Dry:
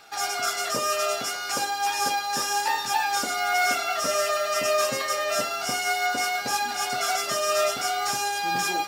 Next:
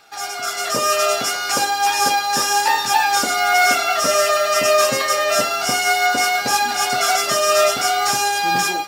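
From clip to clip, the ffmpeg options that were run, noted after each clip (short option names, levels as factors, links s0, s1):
-af "dynaudnorm=f=430:g=3:m=2.66"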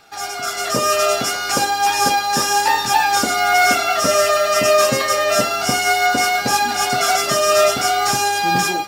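-af "lowshelf=f=300:g=9"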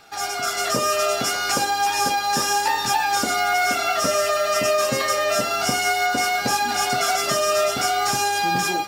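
-af "acompressor=threshold=0.112:ratio=3"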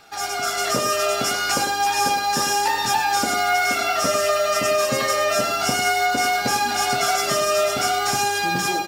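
-filter_complex "[0:a]asplit=2[s0][s1];[s1]adelay=99.13,volume=0.355,highshelf=f=4000:g=-2.23[s2];[s0][s2]amix=inputs=2:normalize=0"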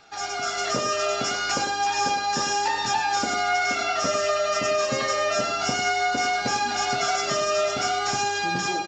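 -af "aresample=16000,aresample=44100,volume=0.668"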